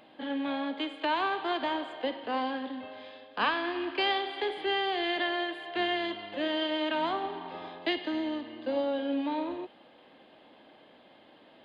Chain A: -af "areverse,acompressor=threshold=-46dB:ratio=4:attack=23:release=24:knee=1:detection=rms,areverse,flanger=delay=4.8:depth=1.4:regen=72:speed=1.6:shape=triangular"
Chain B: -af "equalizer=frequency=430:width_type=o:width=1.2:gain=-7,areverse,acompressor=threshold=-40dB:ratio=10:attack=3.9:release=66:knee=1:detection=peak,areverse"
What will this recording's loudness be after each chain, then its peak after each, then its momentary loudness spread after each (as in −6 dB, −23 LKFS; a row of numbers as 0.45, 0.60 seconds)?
−47.5, −43.0 LKFS; −33.0, −31.5 dBFS; 15, 17 LU